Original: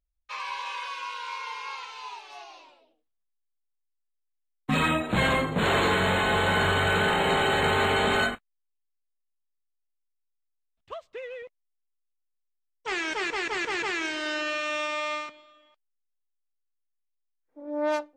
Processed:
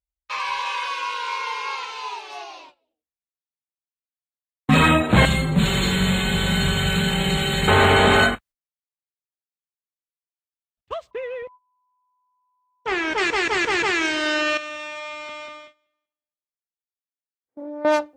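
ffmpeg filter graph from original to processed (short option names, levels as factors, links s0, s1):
-filter_complex "[0:a]asettb=1/sr,asplit=3[s0][s1][s2];[s0]atrim=end=0.894[s3];[s1]atrim=start=0.89:end=2.5,asetpts=PTS-STARTPTS,afade=t=in:d=0.004:c=qsin,afade=t=out:st=1.606:d=0.004:c=qsin,highpass=f=150:p=1,equalizer=f=410:w=2.5:g=5.5[s4];[s2]atrim=start=2.496[s5];[s3][s4]acrossfade=d=0.004:c1=hsin:c2=qsin[s6];[s6][s5]acrossfade=d=0.004:c1=qsin:c2=hsin,asettb=1/sr,asplit=3[s7][s8][s9];[s7]atrim=end=5.254[s10];[s8]atrim=start=5.25:end=7.68,asetpts=PTS-STARTPTS,afade=t=in:d=0.004:c=qsin,afade=t=out:st=2.426:d=0.004:c=qsin,aecho=1:1:5.2:0.7,atrim=end_sample=107163,acrossover=split=200|3000[s11][s12][s13];[s12]acompressor=threshold=0.0126:ratio=4:attack=3.2:release=140:knee=2.83:detection=peak[s14];[s11][s14][s13]amix=inputs=3:normalize=0[s15];[s9]atrim=start=7.676[s16];[s10][s15]acrossfade=d=0.004:c1=hsin:c2=qsin[s17];[s17][s16]acrossfade=d=0.004:c1=qsin:c2=hsin,asettb=1/sr,asplit=3[s18][s19][s20];[s18]atrim=end=11.114[s21];[s19]atrim=start=11.11:end=13.18,asetpts=PTS-STARTPTS,afade=t=in:d=0.004:c=qsin,afade=t=out:st=2.066:d=0.004:c=qsin,lowpass=f=2000:p=1,aeval=exprs='val(0)+0.00158*sin(2*PI*1000*n/s)':c=same[s22];[s20]atrim=start=13.176[s23];[s21][s22]acrossfade=d=0.004:c1=hsin:c2=qsin[s24];[s24][s23]acrossfade=d=0.004:c1=qsin:c2=hsin,asettb=1/sr,asplit=3[s25][s26][s27];[s25]atrim=end=14.574[s28];[s26]atrim=start=14.57:end=17.85,asetpts=PTS-STARTPTS,afade=t=in:d=0.004:c=qsin,afade=t=out:st=3.276:d=0.004:c=qsin,aecho=1:1:191|382|573|764:0.398|0.135|0.046|0.0156,atrim=end_sample=144648,acompressor=threshold=0.0126:ratio=10:attack=3.2:release=140:knee=1:detection=peak[s29];[s27]atrim=start=17.846[s30];[s28][s29]acrossfade=d=0.004:c1=hsin:c2=qsin[s31];[s31][s30]acrossfade=d=0.004:c1=qsin:c2=hsin,agate=range=0.1:threshold=0.00251:ratio=16:detection=peak,highpass=51,lowshelf=f=91:g=11,volume=2.51"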